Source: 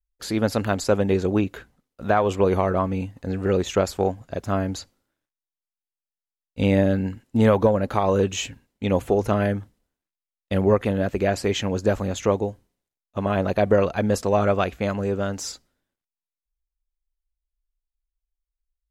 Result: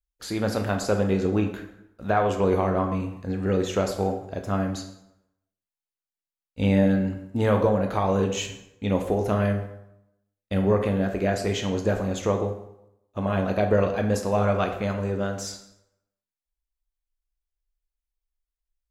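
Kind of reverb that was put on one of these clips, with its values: plate-style reverb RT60 0.82 s, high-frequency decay 0.7×, DRR 3.5 dB; trim -4 dB

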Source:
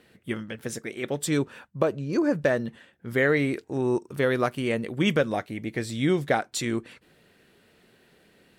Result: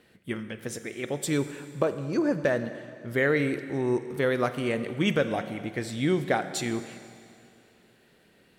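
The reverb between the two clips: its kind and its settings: Schroeder reverb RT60 2.4 s, combs from 33 ms, DRR 10.5 dB; trim -2 dB

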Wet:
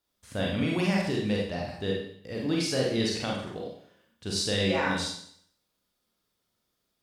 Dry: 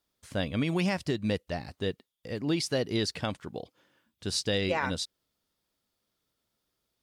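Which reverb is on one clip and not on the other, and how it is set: Schroeder reverb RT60 0.64 s, combs from 31 ms, DRR -3 dB; trim -2.5 dB

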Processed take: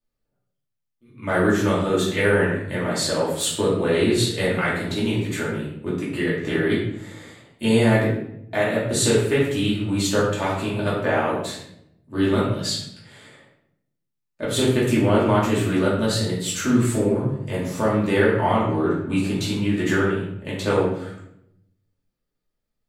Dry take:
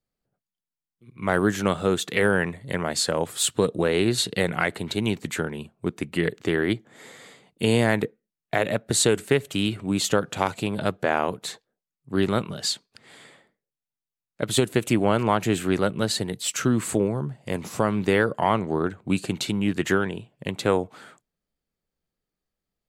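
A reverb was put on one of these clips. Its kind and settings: simulated room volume 190 m³, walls mixed, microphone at 2.6 m; trim -7 dB

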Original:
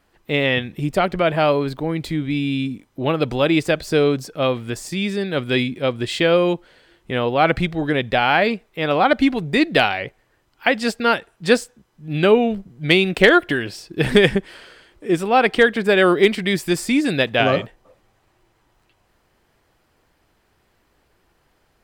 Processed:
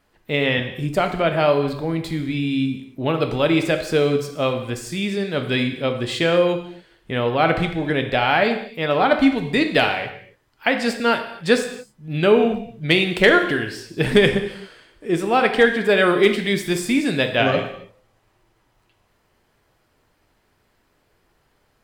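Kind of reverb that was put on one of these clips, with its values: gated-style reverb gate 300 ms falling, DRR 5.5 dB; trim -2 dB

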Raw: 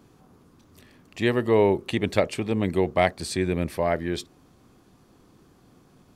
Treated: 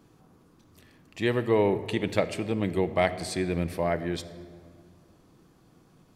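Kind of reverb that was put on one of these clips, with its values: simulated room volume 3200 m³, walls mixed, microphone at 0.64 m; trim -3.5 dB

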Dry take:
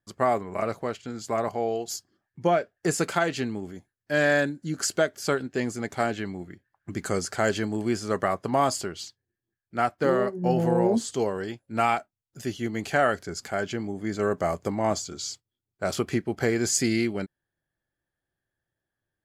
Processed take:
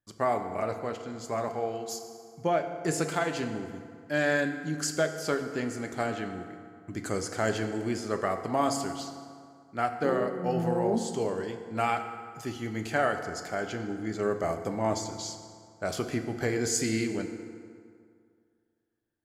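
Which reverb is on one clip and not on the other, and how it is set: FDN reverb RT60 2.2 s, low-frequency decay 0.95×, high-frequency decay 0.6×, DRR 6 dB; trim -4.5 dB

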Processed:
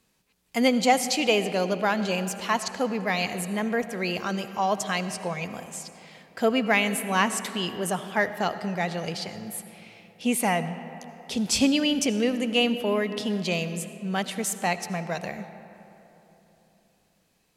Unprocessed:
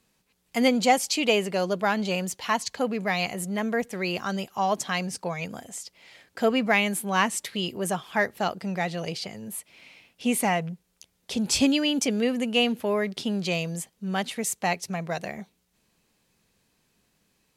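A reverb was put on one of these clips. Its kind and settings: algorithmic reverb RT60 3.4 s, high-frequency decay 0.5×, pre-delay 40 ms, DRR 11 dB

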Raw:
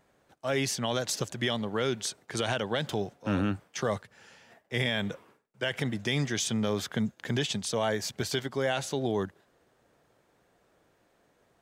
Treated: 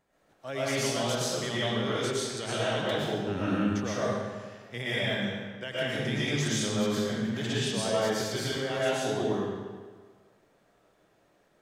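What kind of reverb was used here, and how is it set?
algorithmic reverb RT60 1.5 s, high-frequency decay 0.85×, pre-delay 80 ms, DRR -9 dB; trim -8 dB

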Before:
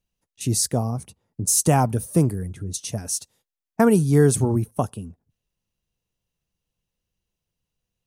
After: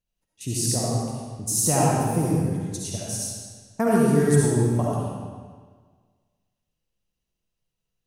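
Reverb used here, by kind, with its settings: algorithmic reverb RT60 1.6 s, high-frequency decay 0.9×, pre-delay 30 ms, DRR -5.5 dB; trim -7 dB

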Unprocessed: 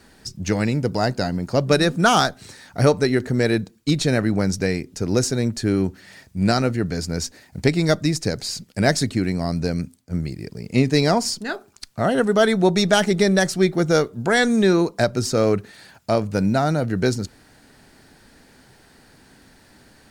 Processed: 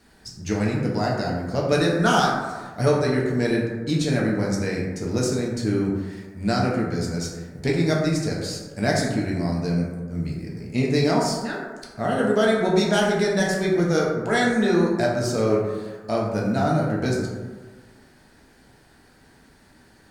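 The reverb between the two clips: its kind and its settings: plate-style reverb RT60 1.4 s, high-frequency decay 0.35×, DRR -3.5 dB; trim -7.5 dB

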